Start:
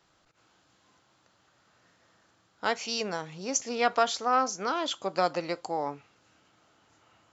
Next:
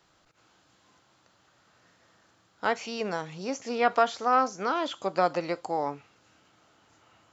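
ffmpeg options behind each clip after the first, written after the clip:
-filter_complex "[0:a]acrossover=split=2600[a][b];[b]acompressor=threshold=-43dB:ratio=4:attack=1:release=60[c];[a][c]amix=inputs=2:normalize=0,volume=2dB"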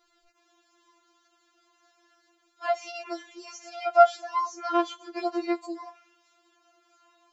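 -af "afftfilt=real='re*4*eq(mod(b,16),0)':imag='im*4*eq(mod(b,16),0)':win_size=2048:overlap=0.75"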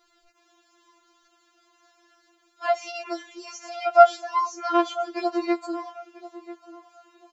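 -filter_complex "[0:a]asplit=2[a][b];[b]adelay=991,lowpass=f=1.8k:p=1,volume=-15.5dB,asplit=2[c][d];[d]adelay=991,lowpass=f=1.8k:p=1,volume=0.25,asplit=2[e][f];[f]adelay=991,lowpass=f=1.8k:p=1,volume=0.25[g];[a][c][e][g]amix=inputs=4:normalize=0,volume=3.5dB"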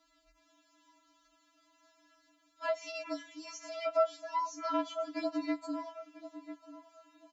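-af "acompressor=threshold=-26dB:ratio=2,afreqshift=-44,volume=-6dB"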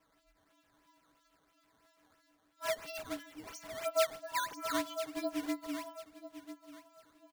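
-af "aecho=1:1:142:0.0944,acrusher=samples=10:mix=1:aa=0.000001:lfo=1:lforange=16:lforate=3,volume=-2dB"

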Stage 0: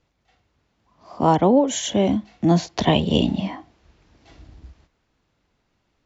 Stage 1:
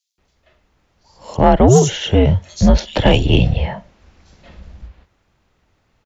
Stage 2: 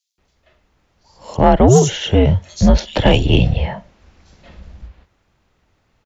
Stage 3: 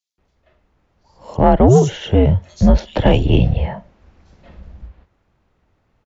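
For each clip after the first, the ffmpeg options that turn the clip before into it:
-filter_complex "[0:a]afreqshift=-120,acrossover=split=4300[a][b];[a]adelay=180[c];[c][b]amix=inputs=2:normalize=0,acontrast=72,volume=1dB"
-af anull
-af "highshelf=f=2.3k:g=-10.5"

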